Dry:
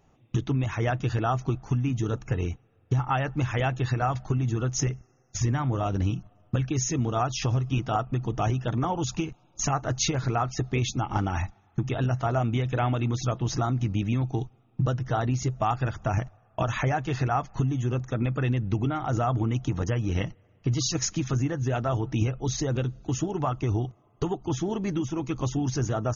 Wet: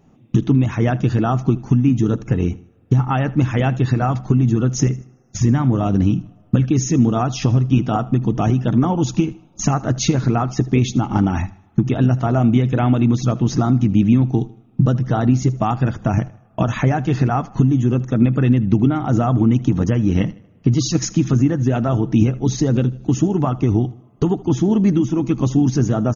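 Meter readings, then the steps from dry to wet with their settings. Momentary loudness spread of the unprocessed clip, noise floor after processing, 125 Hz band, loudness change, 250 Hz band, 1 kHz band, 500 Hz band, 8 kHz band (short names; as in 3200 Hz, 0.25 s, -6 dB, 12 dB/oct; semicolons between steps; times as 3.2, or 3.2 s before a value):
5 LU, -51 dBFS, +9.5 dB, +10.0 dB, +14.0 dB, +5.0 dB, +7.5 dB, n/a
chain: bell 220 Hz +13 dB 1.4 oct; on a send: feedback echo 78 ms, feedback 38%, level -20 dB; on the sum: gain +3.5 dB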